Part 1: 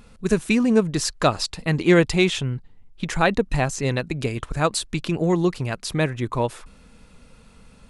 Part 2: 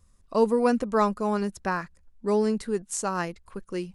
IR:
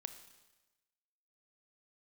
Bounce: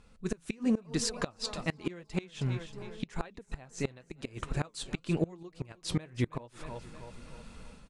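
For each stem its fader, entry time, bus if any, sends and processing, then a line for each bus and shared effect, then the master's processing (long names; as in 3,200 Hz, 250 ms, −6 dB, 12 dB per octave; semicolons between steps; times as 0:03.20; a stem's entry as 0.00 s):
−6.5 dB, 0.00 s, no send, echo send −18.5 dB, low-pass filter 10,000 Hz 24 dB per octave; automatic gain control gain up to 12 dB
−2.0 dB, 0.50 s, no send, echo send −11.5 dB, downward compressor, threshold −30 dBFS, peak gain reduction 14 dB; automatic ducking −9 dB, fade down 1.80 s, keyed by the first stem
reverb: not used
echo: repeating echo 316 ms, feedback 47%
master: flanger 0.92 Hz, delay 2 ms, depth 8.9 ms, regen −66%; gate with flip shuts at −18 dBFS, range −25 dB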